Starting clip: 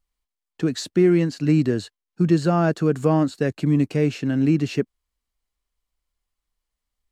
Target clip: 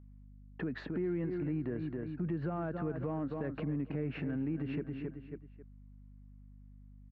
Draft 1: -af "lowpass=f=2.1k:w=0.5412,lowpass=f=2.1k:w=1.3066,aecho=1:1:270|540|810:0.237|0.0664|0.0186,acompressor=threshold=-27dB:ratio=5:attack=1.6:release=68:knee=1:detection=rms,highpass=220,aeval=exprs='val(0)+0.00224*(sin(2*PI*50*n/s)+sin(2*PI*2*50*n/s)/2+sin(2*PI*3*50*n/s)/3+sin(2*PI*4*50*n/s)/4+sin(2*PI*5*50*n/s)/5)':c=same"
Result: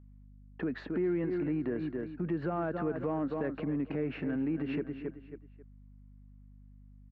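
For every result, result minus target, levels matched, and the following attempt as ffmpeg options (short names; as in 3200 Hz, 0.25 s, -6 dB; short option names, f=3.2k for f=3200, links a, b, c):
compressor: peak gain reduction -5 dB; 125 Hz band -5.0 dB
-af "lowpass=f=2.1k:w=0.5412,lowpass=f=2.1k:w=1.3066,aecho=1:1:270|540|810:0.237|0.0664|0.0186,acompressor=threshold=-33.5dB:ratio=5:attack=1.6:release=68:knee=1:detection=rms,highpass=220,aeval=exprs='val(0)+0.00224*(sin(2*PI*50*n/s)+sin(2*PI*2*50*n/s)/2+sin(2*PI*3*50*n/s)/3+sin(2*PI*4*50*n/s)/4+sin(2*PI*5*50*n/s)/5)':c=same"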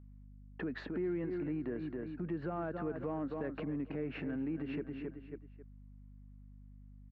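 125 Hz band -4.5 dB
-af "lowpass=f=2.1k:w=0.5412,lowpass=f=2.1k:w=1.3066,aecho=1:1:270|540|810:0.237|0.0664|0.0186,acompressor=threshold=-33.5dB:ratio=5:attack=1.6:release=68:knee=1:detection=rms,highpass=88,aeval=exprs='val(0)+0.00224*(sin(2*PI*50*n/s)+sin(2*PI*2*50*n/s)/2+sin(2*PI*3*50*n/s)/3+sin(2*PI*4*50*n/s)/4+sin(2*PI*5*50*n/s)/5)':c=same"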